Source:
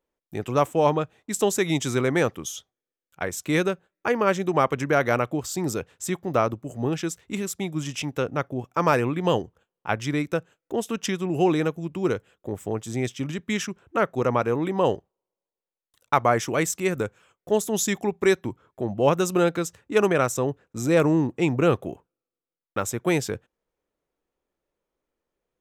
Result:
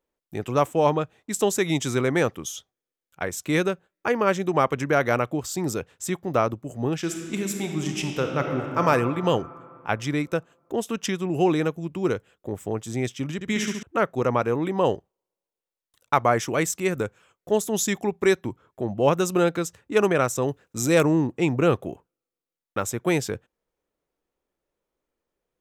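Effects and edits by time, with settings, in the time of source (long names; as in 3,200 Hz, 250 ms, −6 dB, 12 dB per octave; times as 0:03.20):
0:06.97–0:08.81: thrown reverb, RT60 2.8 s, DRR 2.5 dB
0:13.34–0:13.83: flutter between parallel walls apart 12 metres, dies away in 0.85 s
0:20.42–0:21.03: high-shelf EQ 2,900 Hz +9 dB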